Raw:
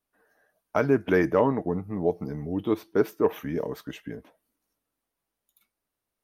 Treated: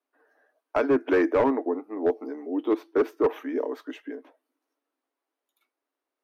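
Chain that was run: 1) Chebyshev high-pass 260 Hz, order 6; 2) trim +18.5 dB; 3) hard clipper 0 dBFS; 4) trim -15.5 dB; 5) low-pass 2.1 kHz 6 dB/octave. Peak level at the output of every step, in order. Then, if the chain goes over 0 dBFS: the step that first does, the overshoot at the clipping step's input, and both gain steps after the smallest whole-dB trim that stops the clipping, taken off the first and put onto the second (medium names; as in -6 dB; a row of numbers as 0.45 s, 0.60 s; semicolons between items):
-10.5 dBFS, +8.0 dBFS, 0.0 dBFS, -15.5 dBFS, -15.5 dBFS; step 2, 8.0 dB; step 2 +10.5 dB, step 4 -7.5 dB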